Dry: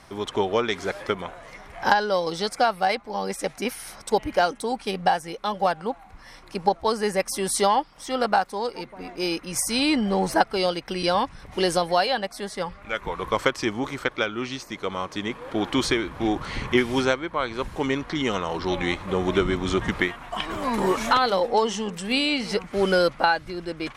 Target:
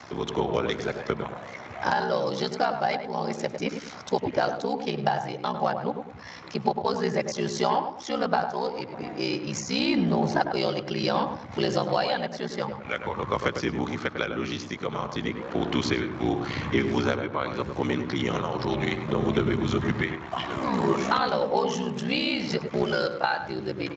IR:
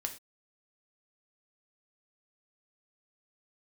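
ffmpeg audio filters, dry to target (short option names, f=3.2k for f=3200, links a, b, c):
-filter_complex "[0:a]highpass=51,asplit=3[a][b][c];[a]afade=t=out:st=22.83:d=0.02[d];[b]lowshelf=f=490:g=-8.5,afade=t=in:st=22.83:d=0.02,afade=t=out:st=23.38:d=0.02[e];[c]afade=t=in:st=23.38:d=0.02[f];[d][e][f]amix=inputs=3:normalize=0,acrossover=split=140[g][h];[h]acompressor=threshold=-47dB:ratio=1.5[i];[g][i]amix=inputs=2:normalize=0,asettb=1/sr,asplit=3[j][k][l];[j]atrim=end=11.584[m];[k]atrim=start=11.58:end=12.25,asetpts=PTS-STARTPTS,afade=t=in:d=0.004:c=qsin,afade=t=out:st=0.666:d=0.004:c=qsin,aeval=exprs='val(0)+0.001*(sin(2*PI*50*n/s)+sin(2*PI*2*50*n/s)/2+sin(2*PI*3*50*n/s)/3+sin(2*PI*4*50*n/s)/4+sin(2*PI*5*50*n/s)/5)':c=same[n];[l]atrim=start=12.246[o];[m][n]acrossfade=d=0.004:c1=hsin:c2=qsin[p];[p][o]acrossfade=d=0.004:c1=qsin:c2=hsin,aeval=exprs='val(0)*sin(2*PI*32*n/s)':c=same,asettb=1/sr,asplit=3[q][r][s];[q]atrim=end=20.374[t];[r]atrim=start=20.37:end=20.98,asetpts=PTS-STARTPTS,afade=t=in:d=0.004:c=qsin,afade=t=out:st=0.606:d=0.004:c=qsin,asplit=2[u][v];[v]adelay=15,volume=-12.5dB[w];[u][w]amix=inputs=2:normalize=0,atrim=end_sample=26901[x];[s]atrim=start=20.976[y];[t][x]acrossfade=d=0.004:c1=hsin:c2=qsin[z];[z][y]acrossfade=d=0.004:c1=qsin:c2=hsin,asplit=2[aa][ab];[ab]adelay=102,lowpass=f=1.3k:p=1,volume=-6dB,asplit=2[ac][ad];[ad]adelay=102,lowpass=f=1.3k:p=1,volume=0.38,asplit=2[ae][af];[af]adelay=102,lowpass=f=1.3k:p=1,volume=0.38,asplit=2[ag][ah];[ah]adelay=102,lowpass=f=1.3k:p=1,volume=0.38,asplit=2[ai][aj];[aj]adelay=102,lowpass=f=1.3k:p=1,volume=0.38[ak];[aa][ac][ae][ag][ai][ak]amix=inputs=6:normalize=0,volume=9dB" -ar 16000 -c:a libspeex -b:a 34k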